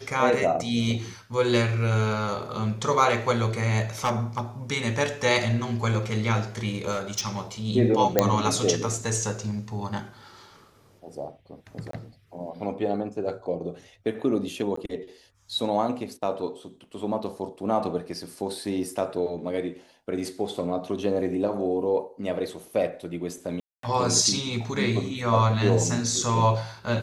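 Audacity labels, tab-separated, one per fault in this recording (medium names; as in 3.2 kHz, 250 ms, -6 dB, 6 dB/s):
4.040000	4.400000	clipped -19 dBFS
6.910000	7.390000	clipped -22.5 dBFS
8.190000	8.190000	pop -4 dBFS
11.910000	11.930000	dropout 23 ms
14.760000	14.770000	dropout 14 ms
23.600000	23.830000	dropout 233 ms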